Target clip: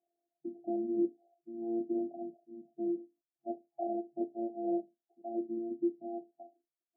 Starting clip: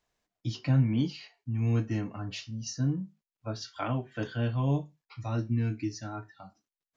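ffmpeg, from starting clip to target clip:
ffmpeg -i in.wav -af "afftfilt=real='hypot(re,im)*cos(PI*b)':imag='0':win_size=512:overlap=0.75,afftfilt=real='re*between(b*sr/4096,140,820)':imag='im*between(b*sr/4096,140,820)':win_size=4096:overlap=0.75,volume=3dB" out.wav

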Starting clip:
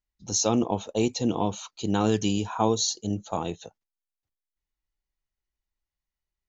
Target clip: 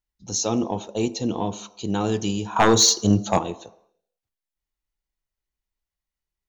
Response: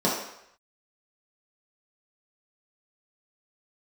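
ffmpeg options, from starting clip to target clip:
-filter_complex "[0:a]asettb=1/sr,asplit=3[link_01][link_02][link_03];[link_01]atrim=end=2.564[link_04];[link_02]atrim=start=2.56:end=3.39,asetpts=PTS-STARTPTS,afade=type=in:duration=0.004:curve=qsin,afade=type=out:start_time=0.826:duration=0.004:curve=qsin,aeval=exprs='0.376*sin(PI/2*2.51*val(0)/0.376)':channel_layout=same[link_05];[link_03]atrim=start=3.386[link_06];[link_04][link_05]acrossfade=duration=0.004:curve1=hsin:curve2=qsin[link_07];[link_07][link_06]acrossfade=duration=0.004:curve1=qsin:curve2=hsin,aeval=exprs='0.398*(cos(1*acos(clip(val(0)/0.398,-1,1)))-cos(1*PI/2))+0.0178*(cos(3*acos(clip(val(0)/0.398,-1,1)))-cos(3*PI/2))+0.0126*(cos(5*acos(clip(val(0)/0.398,-1,1)))-cos(5*PI/2))':channel_layout=same,asplit=2[link_08][link_09];[1:a]atrim=start_sample=2205,adelay=12[link_10];[link_09][link_10]afir=irnorm=-1:irlink=0,volume=-29dB[link_11];[link_08][link_11]amix=inputs=2:normalize=0"

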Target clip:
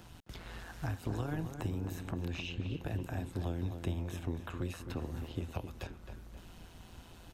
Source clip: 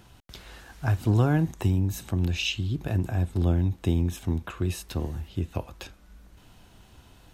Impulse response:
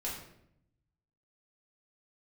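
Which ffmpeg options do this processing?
-filter_complex "[0:a]tremolo=f=170:d=0.667,acrossover=split=410|2400[link_01][link_02][link_03];[link_01]acompressor=threshold=-40dB:ratio=4[link_04];[link_02]acompressor=threshold=-47dB:ratio=4[link_05];[link_03]acompressor=threshold=-58dB:ratio=4[link_06];[link_04][link_05][link_06]amix=inputs=3:normalize=0,asplit=2[link_07][link_08];[link_08]adelay=264,lowpass=frequency=2500:poles=1,volume=-8dB,asplit=2[link_09][link_10];[link_10]adelay=264,lowpass=frequency=2500:poles=1,volume=0.49,asplit=2[link_11][link_12];[link_12]adelay=264,lowpass=frequency=2500:poles=1,volume=0.49,asplit=2[link_13][link_14];[link_14]adelay=264,lowpass=frequency=2500:poles=1,volume=0.49,asplit=2[link_15][link_16];[link_16]adelay=264,lowpass=frequency=2500:poles=1,volume=0.49,asplit=2[link_17][link_18];[link_18]adelay=264,lowpass=frequency=2500:poles=1,volume=0.49[link_19];[link_07][link_09][link_11][link_13][link_15][link_17][link_19]amix=inputs=7:normalize=0,volume=2.5dB"

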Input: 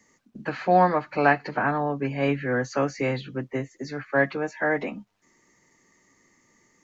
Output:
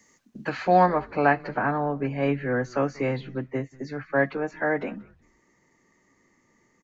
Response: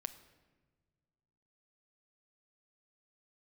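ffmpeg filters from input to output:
-filter_complex "[0:a]asetnsamples=nb_out_samples=441:pad=0,asendcmd='0.86 highshelf g -9.5',highshelf=frequency=3100:gain=4.5,asplit=3[link_01][link_02][link_03];[link_02]adelay=186,afreqshift=-130,volume=-23dB[link_04];[link_03]adelay=372,afreqshift=-260,volume=-32.9dB[link_05];[link_01][link_04][link_05]amix=inputs=3:normalize=0"

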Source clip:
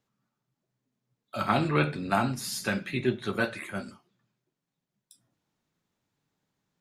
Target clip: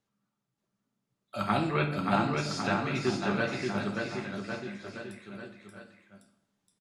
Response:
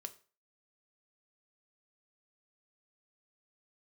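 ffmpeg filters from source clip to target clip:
-filter_complex "[0:a]asettb=1/sr,asplit=3[link_01][link_02][link_03];[link_01]atrim=end=1.724[link_04];[link_02]atrim=start=1.72:end=3.78,asetpts=PTS-STARTPTS,afade=type=in:duration=0.004:curve=qsin,afade=type=out:start_time=2.056:duration=0.004:curve=qsin,lowpass=frequency=6700:width=0.5412,lowpass=frequency=6700:width=1.3066[link_05];[link_03]atrim=start=3.776[link_06];[link_04][link_05]acrossfade=duration=0.004:curve1=hsin:curve2=qsin[link_07];[link_07][link_06]acrossfade=duration=0.004:curve1=qsin:curve2=hsin,aecho=1:1:580|1102|1572|1995|2375:0.631|0.398|0.251|0.158|0.1[link_08];[1:a]atrim=start_sample=2205,asetrate=22050,aresample=44100[link_09];[link_08][link_09]afir=irnorm=-1:irlink=0,volume=-2dB"

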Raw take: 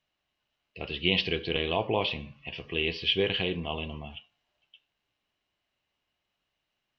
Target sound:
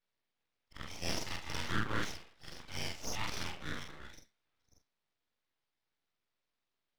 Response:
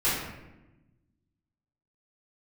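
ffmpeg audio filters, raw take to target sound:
-filter_complex "[0:a]afftfilt=real='re':imag='-im':win_size=4096:overlap=0.75,acrossover=split=570 2300:gain=0.0708 1 0.0708[link_01][link_02][link_03];[link_01][link_02][link_03]amix=inputs=3:normalize=0,aeval=exprs='abs(val(0))':channel_layout=same,volume=6dB"

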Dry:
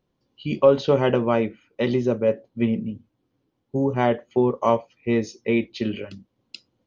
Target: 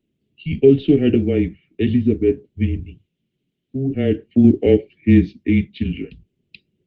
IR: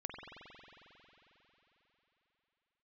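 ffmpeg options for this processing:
-filter_complex "[0:a]asettb=1/sr,asplit=3[link_01][link_02][link_03];[link_01]atrim=end=1.174[link_04];[link_02]atrim=start=1.17:end=1.82,asetpts=PTS-STARTPTS,afade=type=in:duration=0.004:curve=qsin,afade=type=out:start_time=0.646:duration=0.004:curve=qsin,agate=range=-33dB:threshold=-60dB:ratio=16:detection=peak[link_05];[link_03]atrim=start=1.816[link_06];[link_04][link_05]acrossfade=duration=0.004:curve1=hsin:curve2=qsin[link_07];[link_07][link_06]acrossfade=duration=0.004:curve1=qsin:curve2=hsin,asplit=3[link_08][link_09][link_10];[link_08]afade=type=out:start_time=2.82:duration=0.02[link_11];[link_09]aemphasis=mode=production:type=riaa,afade=type=in:start_time=2.82:duration=0.02,afade=type=out:start_time=3.88:duration=0.02[link_12];[link_10]afade=type=in:start_time=3.88:duration=0.02[link_13];[link_11][link_12][link_13]amix=inputs=3:normalize=0,asettb=1/sr,asplit=3[link_14][link_15][link_16];[link_14]atrim=end=4.444[link_17];[link_15]atrim=start=4.44:end=5.33,asetpts=PTS-STARTPTS,afade=type=in:duration=0.004:curve=qsin,afade=type=out:start_time=0.886:duration=0.004:curve=qsin,acontrast=37[link_18];[link_16]atrim=start=5.326[link_19];[link_17][link_18]acrossfade=duration=0.004:curve1=hsin:curve2=qsin[link_20];[link_20][link_19]acrossfade=duration=0.004:curve1=qsin:curve2=hsin,lowshelf=frequency=440:gain=5.5,highpass=frequency=280:width_type=q:width=0.5412,highpass=frequency=280:width_type=q:width=1.307,lowpass=frequency=3500:width_type=q:width=0.5176,lowpass=frequency=3500:width_type=q:width=0.7071,lowpass=frequency=3500:width_type=q:width=1.932,afreqshift=-140,asuperstop=centerf=1000:order=4:qfactor=0.5,volume=4.5dB" -ar 48000 -c:a libopus -b:a 20k

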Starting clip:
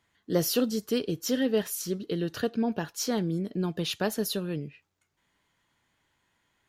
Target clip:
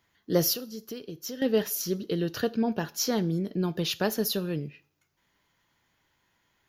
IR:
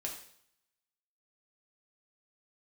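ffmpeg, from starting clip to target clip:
-filter_complex "[0:a]asettb=1/sr,asplit=3[link_01][link_02][link_03];[link_01]atrim=end=0.534[link_04];[link_02]atrim=start=0.53:end=1.42,asetpts=PTS-STARTPTS,afade=type=in:duration=0.004:curve=qsin,afade=type=out:start_time=0.886:duration=0.004:curve=qsin,acompressor=threshold=-39dB:ratio=4[link_05];[link_03]atrim=start=1.416[link_06];[link_04][link_05]acrossfade=duration=0.004:curve1=hsin:curve2=qsin[link_07];[link_07][link_06]acrossfade=duration=0.004:curve1=qsin:curve2=hsin,aexciter=amount=1:drive=3.7:freq=4800,asplit=2[link_08][link_09];[1:a]atrim=start_sample=2205,asetrate=57330,aresample=44100[link_10];[link_09][link_10]afir=irnorm=-1:irlink=0,volume=-10.5dB[link_11];[link_08][link_11]amix=inputs=2:normalize=0"

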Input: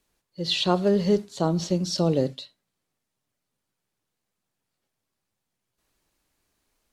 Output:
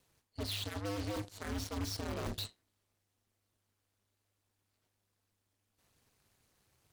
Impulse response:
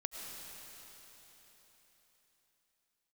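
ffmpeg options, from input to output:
-af "areverse,acompressor=threshold=-34dB:ratio=10,areverse,aeval=exprs='0.0211*(abs(mod(val(0)/0.0211+3,4)-2)-1)':channel_layout=same,aeval=exprs='0.0211*(cos(1*acos(clip(val(0)/0.0211,-1,1)))-cos(1*PI/2))+0.00531*(cos(8*acos(clip(val(0)/0.0211,-1,1)))-cos(8*PI/2))':channel_layout=same,aeval=exprs='val(0)*sin(2*PI*100*n/s)':channel_layout=same,volume=3dB"

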